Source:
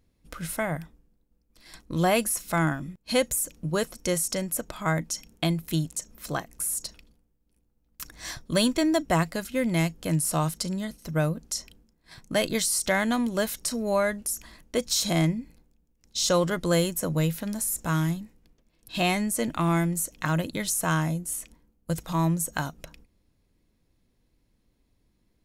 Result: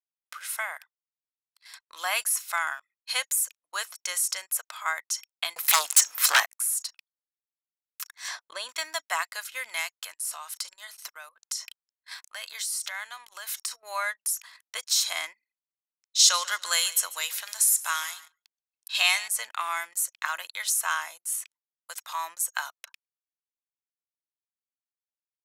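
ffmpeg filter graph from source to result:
-filter_complex "[0:a]asettb=1/sr,asplit=3[s0][s1][s2];[s0]atrim=end=5.564[s3];[s1]atrim=start=5.56:end=6.46,asetpts=PTS-STARTPTS,afade=t=in:d=0.004:c=qsin,afade=t=out:st=0.896:d=0.004:c=qsin,aeval=exprs='0.237*sin(PI/2*5.62*val(0)/0.237)':c=same,aeval=exprs='val(0)+0.0282*(sin(2*PI*60*n/s)+sin(2*PI*2*60*n/s)/2+sin(2*PI*3*60*n/s)/3+sin(2*PI*4*60*n/s)/4+sin(2*PI*5*60*n/s)/5)':c=same[s4];[s2]atrim=start=6.456[s5];[s3][s4]acrossfade=d=0.004:c1=hsin:c2=qsin[s6];[s6][s5]acrossfade=d=0.004:c1=qsin:c2=hsin,asettb=1/sr,asplit=3[s7][s8][s9];[s7]atrim=end=8.284[s10];[s8]atrim=start=8.28:end=8.69,asetpts=PTS-STARTPTS,afade=t=in:d=0.004:c=qsin,afade=t=out:st=0.406:d=0.004:c=qsin,lowpass=9400,acompressor=threshold=0.02:ratio=2.5:attack=3.2:release=140:knee=1:detection=peak,equalizer=f=400:w=0.5:g=14[s11];[s9]atrim=start=8.686[s12];[s10][s11]acrossfade=d=0.004:c1=hsin:c2=qsin[s13];[s13][s12]acrossfade=d=0.004:c1=qsin:c2=hsin,asettb=1/sr,asplit=3[s14][s15][s16];[s14]atrim=end=10.024[s17];[s15]atrim=start=10.02:end=13.83,asetpts=PTS-STARTPTS,afade=t=in:d=0.004:c=qsin,afade=t=out:st=3.806:d=0.004:c=qsin,acompressor=threshold=0.0158:ratio=10:attack=3.2:release=140:knee=1:detection=peak,lowshelf=f=210:g=-7.5,aeval=exprs='0.1*sin(PI/2*1.41*val(0)/0.1)':c=same[s18];[s16]atrim=start=13.826[s19];[s17][s18]acrossfade=d=0.004:c1=hsin:c2=qsin[s20];[s20][s19]acrossfade=d=0.004:c1=qsin:c2=hsin,asettb=1/sr,asplit=3[s21][s22][s23];[s21]atrim=end=16.194[s24];[s22]atrim=start=16.19:end=19.28,asetpts=PTS-STARTPTS,afade=t=in:d=0.004:c=qsin,afade=t=out:st=3.086:d=0.004:c=qsin,equalizer=f=5800:w=0.4:g=7.5,aecho=1:1:143|286|429:0.126|0.0415|0.0137,atrim=end_sample=136269[s25];[s23]atrim=start=19.276[s26];[s24][s25]acrossfade=d=0.004:c1=hsin:c2=qsin[s27];[s27][s26]acrossfade=d=0.004:c1=qsin:c2=hsin,highpass=f=1000:w=0.5412,highpass=f=1000:w=1.3066,anlmdn=0.000631,volume=1.26"

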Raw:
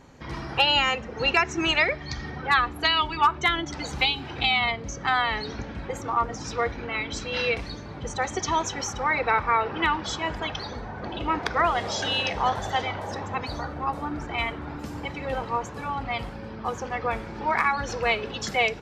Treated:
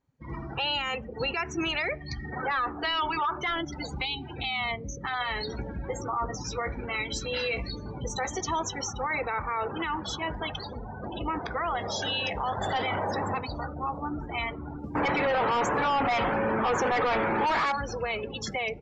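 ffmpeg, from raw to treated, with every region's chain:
-filter_complex "[0:a]asettb=1/sr,asplit=3[s0][s1][s2];[s0]atrim=end=2.324[s3];[s1]atrim=start=2.32:end=3.61,asetpts=PTS-STARTPTS,afade=t=in:d=0.004:c=qsin,afade=t=out:st=1.286:d=0.004:c=qsin,asplit=2[s4][s5];[s5]highpass=f=720:p=1,volume=6.31,asoftclip=type=tanh:threshold=0.299[s6];[s4][s6]amix=inputs=2:normalize=0,lowpass=f=1500:p=1,volume=0.501,lowpass=f=9000:w=0.5412,lowpass=f=9000:w=1.3066[s7];[s2]atrim=start=3.606[s8];[s3][s7]acrossfade=d=0.004:c1=hsin:c2=qsin[s9];[s9][s8]acrossfade=d=0.004:c1=qsin:c2=hsin,asettb=1/sr,asplit=3[s10][s11][s12];[s10]atrim=end=5.044[s13];[s11]atrim=start=5.04:end=8.41,asetpts=PTS-STARTPTS,afade=t=in:d=0.004:c=qsin,afade=t=out:st=3.366:d=0.004:c=qsin,highshelf=f=3300:g=4,acompressor=mode=upward:threshold=0.0398:ratio=2.5:attack=3.2:release=140:knee=2.83:detection=peak,asplit=2[s14][s15];[s15]adelay=16,volume=0.422[s16];[s14][s16]amix=inputs=2:normalize=0,atrim=end_sample=148617[s17];[s12]atrim=start=8.406[s18];[s13][s17]acrossfade=d=0.004:c1=hsin:c2=qsin[s19];[s19][s18]acrossfade=d=0.004:c1=qsin:c2=hsin,asettb=1/sr,asplit=3[s20][s21][s22];[s20]atrim=end=12.614[s23];[s21]atrim=start=12.61:end=13.39,asetpts=PTS-STARTPTS,afade=t=in:d=0.004:c=qsin,afade=t=out:st=0.776:d=0.004:c=qsin,highpass=f=130:p=1,bandreject=f=6100:w=6.1,aeval=exprs='0.251*sin(PI/2*1.58*val(0)/0.251)':c=same[s24];[s22]atrim=start=13.386[s25];[s23][s24]acrossfade=d=0.004:c1=hsin:c2=qsin[s26];[s26][s25]acrossfade=d=0.004:c1=qsin:c2=hsin,asettb=1/sr,asplit=3[s27][s28][s29];[s27]atrim=end=14.954[s30];[s28]atrim=start=14.95:end=17.72,asetpts=PTS-STARTPTS,afade=t=in:d=0.004:c=qsin,afade=t=out:st=2.766:d=0.004:c=qsin,equalizer=f=4100:t=o:w=1.7:g=-7,asplit=2[s31][s32];[s32]highpass=f=720:p=1,volume=39.8,asoftclip=type=tanh:threshold=0.282[s33];[s31][s33]amix=inputs=2:normalize=0,lowpass=f=3600:p=1,volume=0.501[s34];[s29]atrim=start=17.716[s35];[s30][s34]acrossfade=d=0.004:c1=hsin:c2=qsin[s36];[s36][s35]acrossfade=d=0.004:c1=qsin:c2=hsin,afftdn=nr=28:nf=-34,alimiter=limit=0.1:level=0:latency=1:release=23,volume=0.841"

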